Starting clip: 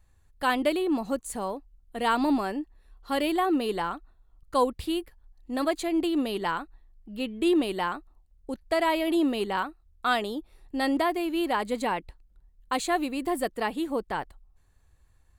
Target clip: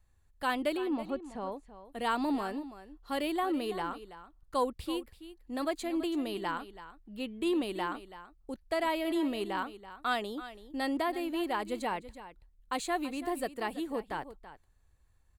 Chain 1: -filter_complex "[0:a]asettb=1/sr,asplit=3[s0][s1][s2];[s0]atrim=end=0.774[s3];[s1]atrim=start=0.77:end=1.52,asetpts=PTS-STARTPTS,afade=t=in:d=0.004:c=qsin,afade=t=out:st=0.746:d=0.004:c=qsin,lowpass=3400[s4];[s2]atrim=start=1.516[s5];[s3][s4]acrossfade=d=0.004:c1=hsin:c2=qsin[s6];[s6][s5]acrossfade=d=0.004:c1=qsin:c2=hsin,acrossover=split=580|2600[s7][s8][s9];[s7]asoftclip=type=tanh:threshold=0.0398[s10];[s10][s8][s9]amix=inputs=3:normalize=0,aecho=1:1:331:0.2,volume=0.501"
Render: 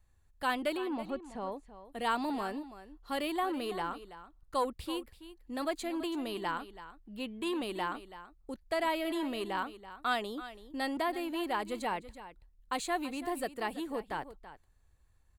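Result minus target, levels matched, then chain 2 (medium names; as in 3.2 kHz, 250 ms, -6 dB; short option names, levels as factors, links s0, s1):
saturation: distortion +16 dB
-filter_complex "[0:a]asettb=1/sr,asplit=3[s0][s1][s2];[s0]atrim=end=0.774[s3];[s1]atrim=start=0.77:end=1.52,asetpts=PTS-STARTPTS,afade=t=in:d=0.004:c=qsin,afade=t=out:st=0.746:d=0.004:c=qsin,lowpass=3400[s4];[s2]atrim=start=1.516[s5];[s3][s4]acrossfade=d=0.004:c1=hsin:c2=qsin[s6];[s6][s5]acrossfade=d=0.004:c1=qsin:c2=hsin,acrossover=split=580|2600[s7][s8][s9];[s7]asoftclip=type=tanh:threshold=0.15[s10];[s10][s8][s9]amix=inputs=3:normalize=0,aecho=1:1:331:0.2,volume=0.501"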